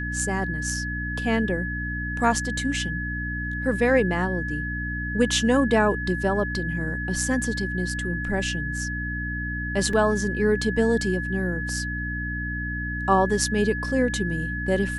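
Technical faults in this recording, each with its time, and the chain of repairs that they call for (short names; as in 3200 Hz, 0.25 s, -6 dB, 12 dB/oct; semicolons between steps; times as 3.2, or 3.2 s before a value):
hum 60 Hz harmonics 5 -31 dBFS
tone 1700 Hz -30 dBFS
9.93 gap 3.7 ms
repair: de-hum 60 Hz, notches 5; notch 1700 Hz, Q 30; interpolate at 9.93, 3.7 ms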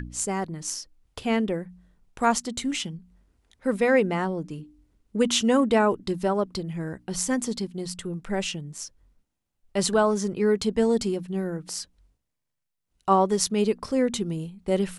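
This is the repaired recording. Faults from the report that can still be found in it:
none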